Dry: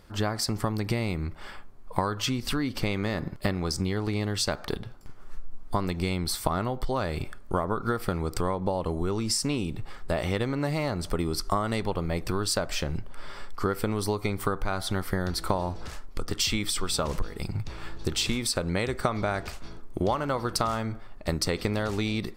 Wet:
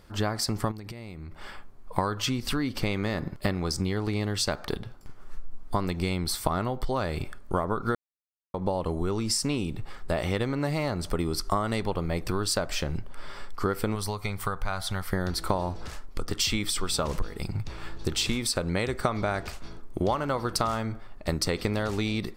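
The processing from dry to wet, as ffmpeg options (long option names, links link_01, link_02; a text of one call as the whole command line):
ffmpeg -i in.wav -filter_complex "[0:a]asettb=1/sr,asplit=3[link_01][link_02][link_03];[link_01]atrim=end=0.714[link_04];[link_02]atrim=start=0.71:end=1.41,asetpts=PTS-STARTPTS,afade=type=in:duration=0.004:curve=qsin,afade=type=out:start_time=0.696:duration=0.004:curve=qsin,acompressor=threshold=-35dB:ratio=12:attack=3.2:release=140:knee=1:detection=peak[link_05];[link_03]atrim=start=1.406[link_06];[link_04][link_05]acrossfade=duration=0.004:curve1=hsin:curve2=qsin[link_07];[link_07][link_06]acrossfade=duration=0.004:curve1=qsin:curve2=hsin,asettb=1/sr,asplit=3[link_08][link_09][link_10];[link_08]atrim=end=13.954[link_11];[link_09]atrim=start=13.95:end=15.13,asetpts=PTS-STARTPTS,afade=type=in:duration=0.004:curve=qsin,afade=type=out:start_time=1.176:duration=0.004:curve=qsin,equalizer=frequency=320:width=1.3:gain=-12[link_12];[link_10]atrim=start=15.126[link_13];[link_11][link_12]acrossfade=duration=0.004:curve1=hsin:curve2=qsin[link_14];[link_14][link_13]acrossfade=duration=0.004:curve1=qsin:curve2=hsin,asplit=3[link_15][link_16][link_17];[link_15]atrim=end=7.95,asetpts=PTS-STARTPTS,afade=type=out:start_time=7.946:duration=0.004:curve=hsin[link_18];[link_16]atrim=start=7.95:end=8.54,asetpts=PTS-STARTPTS,volume=0[link_19];[link_17]atrim=start=8.54,asetpts=PTS-STARTPTS,afade=type=in:duration=0.004:curve=hsin[link_20];[link_18][link_19][link_20]concat=n=3:v=0:a=1" out.wav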